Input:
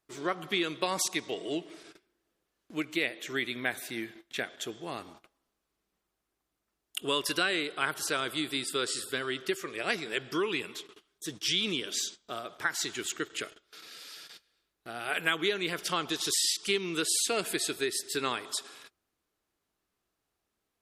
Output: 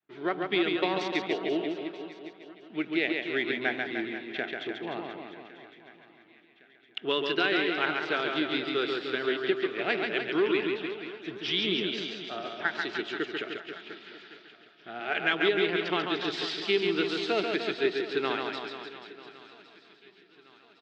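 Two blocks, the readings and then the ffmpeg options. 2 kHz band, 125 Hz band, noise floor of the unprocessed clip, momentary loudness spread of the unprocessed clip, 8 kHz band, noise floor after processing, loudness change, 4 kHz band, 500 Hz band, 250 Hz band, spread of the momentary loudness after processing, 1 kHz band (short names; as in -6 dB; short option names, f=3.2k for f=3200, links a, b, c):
+3.0 dB, +1.0 dB, -84 dBFS, 14 LU, under -20 dB, -59 dBFS, +2.0 dB, 0.0 dB, +6.0 dB, +5.5 dB, 16 LU, +2.5 dB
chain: -filter_complex "[0:a]adynamicsmooth=sensitivity=3.5:basefreq=3k,highpass=170,equalizer=f=270:t=q:w=4:g=-3,equalizer=f=520:t=q:w=4:g=-9,equalizer=f=1.1k:t=q:w=4:g=-7,lowpass=f=3.9k:w=0.5412,lowpass=f=3.9k:w=1.3066,asplit=2[a][b];[b]aecho=0:1:1110|2220|3330|4440:0.106|0.054|0.0276|0.0141[c];[a][c]amix=inputs=2:normalize=0,adynamicequalizer=threshold=0.00447:dfrequency=470:dqfactor=0.79:tfrequency=470:tqfactor=0.79:attack=5:release=100:ratio=0.375:range=3:mode=boostabove:tftype=bell,asplit=2[d][e];[e]aecho=0:1:140|301|486.2|699.1|943.9:0.631|0.398|0.251|0.158|0.1[f];[d][f]amix=inputs=2:normalize=0,volume=1.5dB"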